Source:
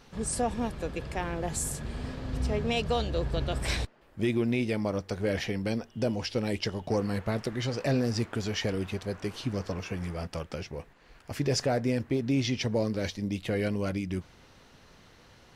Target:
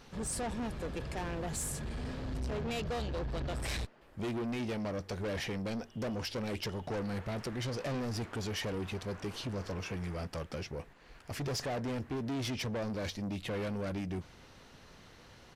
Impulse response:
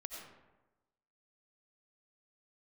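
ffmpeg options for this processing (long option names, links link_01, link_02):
-filter_complex "[0:a]asettb=1/sr,asplit=3[link_01][link_02][link_03];[link_01]atrim=end=2.614[link_04];[link_02]atrim=start=2.61:end=3.52,asetpts=PTS-STARTPTS,afade=type=in:duration=0.004:curve=qsin,afade=type=out:start_time=0.906:duration=0.004:curve=qsin,equalizer=frequency=9300:width_type=o:width=0.84:gain=-10.5[link_05];[link_03]atrim=start=3.516[link_06];[link_04][link_05]acrossfade=duration=0.004:curve1=hsin:curve2=qsin[link_07];[link_07][link_06]acrossfade=duration=0.004:curve1=qsin:curve2=hsin,asoftclip=type=tanh:threshold=-33dB,aresample=32000,aresample=44100"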